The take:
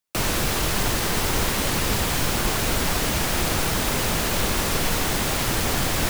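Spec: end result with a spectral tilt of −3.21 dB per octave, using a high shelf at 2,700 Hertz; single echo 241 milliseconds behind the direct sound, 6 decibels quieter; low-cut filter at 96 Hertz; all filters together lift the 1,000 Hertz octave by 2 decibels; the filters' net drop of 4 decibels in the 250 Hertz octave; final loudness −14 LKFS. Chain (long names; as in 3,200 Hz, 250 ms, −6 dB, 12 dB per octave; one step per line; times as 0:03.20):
high-pass filter 96 Hz
parametric band 250 Hz −5.5 dB
parametric band 1,000 Hz +3.5 dB
high-shelf EQ 2,700 Hz −4.5 dB
single-tap delay 241 ms −6 dB
level +10 dB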